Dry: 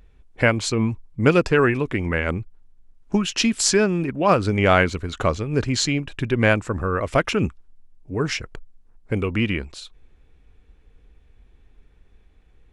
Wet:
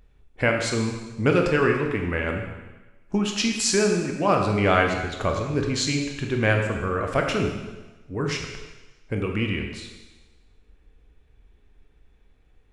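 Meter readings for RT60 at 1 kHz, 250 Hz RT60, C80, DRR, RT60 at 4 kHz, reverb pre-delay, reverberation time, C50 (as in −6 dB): 1.2 s, 1.1 s, 6.0 dB, 2.0 dB, 1.2 s, 18 ms, 1.2 s, 4.0 dB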